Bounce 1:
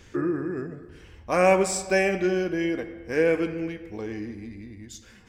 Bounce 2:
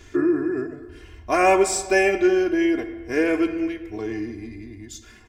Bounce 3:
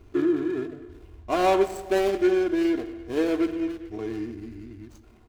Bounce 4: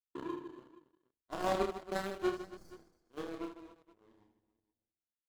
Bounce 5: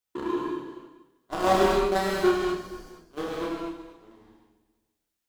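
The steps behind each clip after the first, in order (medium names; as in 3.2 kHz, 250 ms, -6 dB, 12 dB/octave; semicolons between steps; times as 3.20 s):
comb 2.9 ms, depth 85%; trim +1.5 dB
median filter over 25 samples; trim -2.5 dB
power-law waveshaper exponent 3; spectral replace 2.33–2.77 s, 220–4200 Hz after; reverse bouncing-ball echo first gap 30 ms, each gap 1.6×, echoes 5; trim -6.5 dB
gated-style reverb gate 270 ms flat, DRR -3 dB; trim +8 dB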